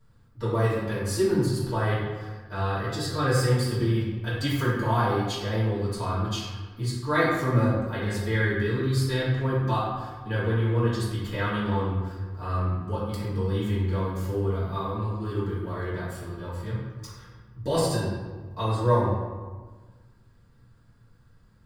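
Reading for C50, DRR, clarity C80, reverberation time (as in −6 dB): −0.5 dB, −10.0 dB, 2.5 dB, 1.4 s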